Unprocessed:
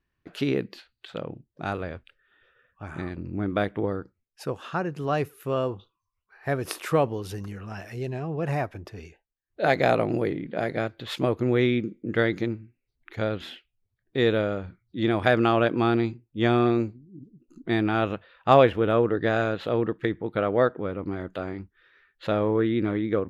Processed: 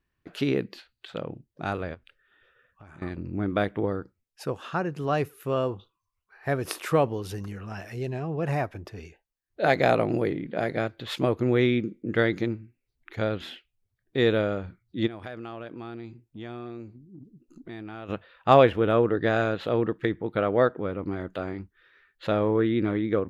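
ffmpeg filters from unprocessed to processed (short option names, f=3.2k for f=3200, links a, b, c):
-filter_complex "[0:a]asettb=1/sr,asplit=3[a][b][c];[a]atrim=end=1.944[d];[b]atrim=start=1.94:end=3.02,asetpts=PTS-STARTPTS,afade=t=in:d=0.004:c=qsin,afade=t=out:st=1.076:d=0.004:c=qsin,acompressor=threshold=-46dB:ratio=6:attack=3.2:release=140:knee=1:detection=peak[e];[c]atrim=start=3.016[f];[d][e]acrossfade=d=0.004:c1=hsin:c2=qsin[g];[g][f]acrossfade=d=0.004:c1=qsin:c2=hsin,asplit=3[h][i][j];[h]afade=t=out:st=15.06:d=0.02[k];[i]acompressor=threshold=-41dB:ratio=3:attack=3.2:release=140:knee=1:detection=peak,afade=t=in:st=15.06:d=0.02,afade=t=out:st=18.08:d=0.02[l];[j]afade=t=in:st=18.08:d=0.02[m];[k][l][m]amix=inputs=3:normalize=0"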